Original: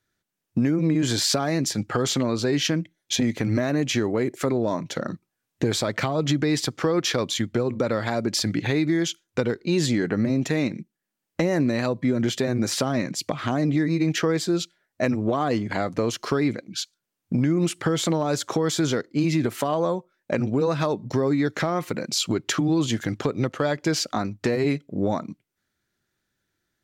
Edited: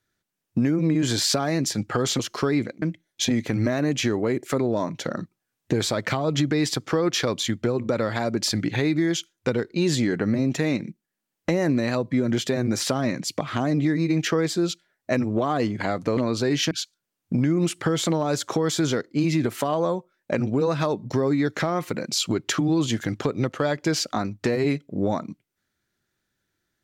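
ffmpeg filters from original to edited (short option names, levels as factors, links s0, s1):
-filter_complex "[0:a]asplit=5[s0][s1][s2][s3][s4];[s0]atrim=end=2.192[s5];[s1]atrim=start=16.078:end=16.712[s6];[s2]atrim=start=2.728:end=16.082[s7];[s3]atrim=start=2.188:end=2.732[s8];[s4]atrim=start=16.708[s9];[s5][s6]acrossfade=d=0.004:c1=hsin:c2=hsin[s10];[s10][s7]acrossfade=d=0.004:c1=hsin:c2=hsin[s11];[s11][s8]acrossfade=d=0.004:c1=hsin:c2=hsin[s12];[s12][s9]acrossfade=d=0.004:c1=hsin:c2=hsin"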